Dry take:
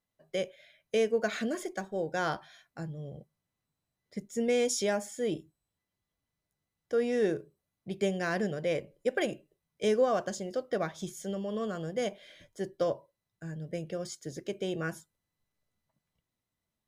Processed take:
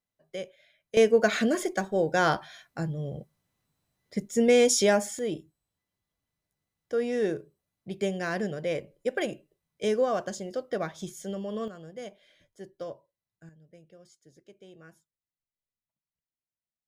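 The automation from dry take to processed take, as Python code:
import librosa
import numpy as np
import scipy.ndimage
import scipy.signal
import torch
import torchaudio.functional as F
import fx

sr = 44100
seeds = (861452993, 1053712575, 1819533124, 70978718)

y = fx.gain(x, sr, db=fx.steps((0.0, -4.0), (0.97, 7.5), (5.19, 0.5), (11.68, -8.5), (13.49, -17.5)))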